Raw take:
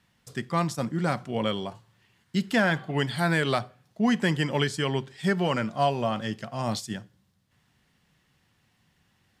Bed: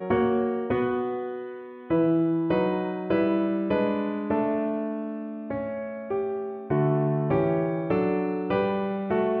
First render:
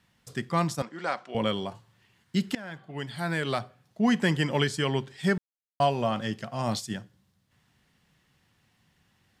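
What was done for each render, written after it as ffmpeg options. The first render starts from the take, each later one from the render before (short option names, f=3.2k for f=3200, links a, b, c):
-filter_complex "[0:a]asettb=1/sr,asplit=3[a][b][c];[a]atrim=end=0.824[d];[b]atrim=start=0.82:end=1.35,asetpts=PTS-STARTPTS,afade=t=in:d=0.004:c=qsin,afade=t=out:st=0.526:d=0.004:c=qsin,highpass=520,lowpass=5.5k[e];[c]atrim=start=1.346[f];[d][e]acrossfade=d=0.004:c1=hsin:c2=qsin[g];[g][f]acrossfade=d=0.004:c1=qsin:c2=hsin,asplit=4[h][i][j][k];[h]atrim=end=2.55,asetpts=PTS-STARTPTS,afade=t=out:st=2.546:d=0.004:c=hsin:silence=0.0749894[l];[i]atrim=start=2.55:end=5.38,asetpts=PTS-STARTPTS,afade=t=in:d=1.52:silence=0.0749894,afade=t=out:st=2.826:d=0.004:c=hsin[m];[j]atrim=start=5.38:end=5.8,asetpts=PTS-STARTPTS,volume=0[n];[k]atrim=start=5.8,asetpts=PTS-STARTPTS,afade=t=in:d=0.004:c=hsin[o];[l][m][n][o]concat=n=4:v=0:a=1"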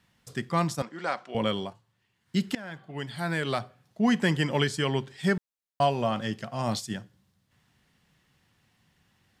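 -filter_complex "[0:a]asplit=3[a][b][c];[a]atrim=end=1.74,asetpts=PTS-STARTPTS,afade=t=out:st=1.59:d=0.15:c=qsin:silence=0.334965[d];[b]atrim=start=1.74:end=2.21,asetpts=PTS-STARTPTS,volume=-9.5dB[e];[c]atrim=start=2.21,asetpts=PTS-STARTPTS,afade=t=in:d=0.15:c=qsin:silence=0.334965[f];[d][e][f]concat=n=3:v=0:a=1"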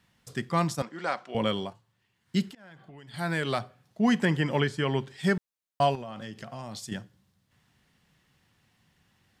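-filter_complex "[0:a]asettb=1/sr,asplit=3[a][b][c];[a]atrim=end=2.484[d];[b]atrim=start=2.48:end=3.14,asetpts=PTS-STARTPTS,afade=t=in:d=0.004:c=qsin,afade=t=out:st=0.656:d=0.004:c=qsin,acompressor=threshold=-44dB:ratio=12:attack=3.2:release=140:knee=1:detection=peak[e];[c]atrim=start=3.136[f];[d][e]acrossfade=d=0.004:c1=hsin:c2=qsin[g];[g][f]acrossfade=d=0.004:c1=qsin:c2=hsin,asettb=1/sr,asplit=3[h][i][j];[h]atrim=end=4.254[k];[i]atrim=start=4.25:end=5.06,asetpts=PTS-STARTPTS,afade=t=in:d=0.004:c=qsin,afade=t=out:st=0.806:d=0.004:c=qsin,acrossover=split=2900[l][m];[m]acompressor=threshold=-46dB:ratio=4:attack=1:release=60[n];[l][n]amix=inputs=2:normalize=0[o];[j]atrim=start=5.056[p];[k][o]acrossfade=d=0.004:c1=hsin:c2=qsin[q];[q][p]acrossfade=d=0.004:c1=qsin:c2=hsin,asettb=1/sr,asplit=3[r][s][t];[r]atrim=end=5.954[u];[s]atrim=start=5.95:end=6.92,asetpts=PTS-STARTPTS,afade=t=in:d=0.004:c=qsin,afade=t=out:st=0.966:d=0.004:c=qsin,acompressor=threshold=-35dB:ratio=8:attack=3.2:release=140:knee=1:detection=peak[v];[t]atrim=start=6.916[w];[u][v]acrossfade=d=0.004:c1=hsin:c2=qsin[x];[x][w]acrossfade=d=0.004:c1=qsin:c2=hsin"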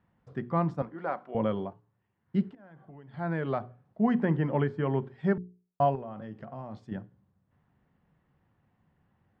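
-af "lowpass=1.1k,bandreject=f=60:t=h:w=6,bandreject=f=120:t=h:w=6,bandreject=f=180:t=h:w=6,bandreject=f=240:t=h:w=6,bandreject=f=300:t=h:w=6,bandreject=f=360:t=h:w=6,bandreject=f=420:t=h:w=6"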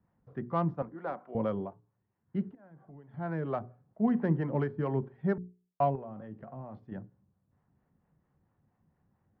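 -filter_complex "[0:a]acrossover=split=530[a][b];[b]adynamicsmooth=sensitivity=1:basefreq=1.9k[c];[a][c]amix=inputs=2:normalize=0,acrossover=split=440[d][e];[d]aeval=exprs='val(0)*(1-0.5/2+0.5/2*cos(2*PI*4.4*n/s))':c=same[f];[e]aeval=exprs='val(0)*(1-0.5/2-0.5/2*cos(2*PI*4.4*n/s))':c=same[g];[f][g]amix=inputs=2:normalize=0"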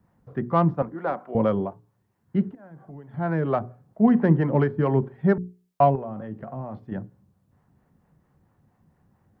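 -af "volume=9.5dB"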